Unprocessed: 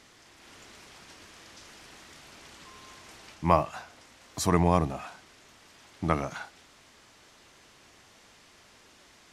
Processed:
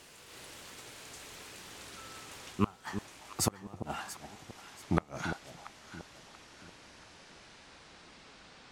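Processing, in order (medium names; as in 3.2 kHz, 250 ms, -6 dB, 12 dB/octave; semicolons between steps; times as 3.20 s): gliding tape speed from 143% -> 71%; inverted gate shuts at -14 dBFS, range -32 dB; echo whose repeats swap between lows and highs 342 ms, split 850 Hz, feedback 59%, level -9 dB; trim +1.5 dB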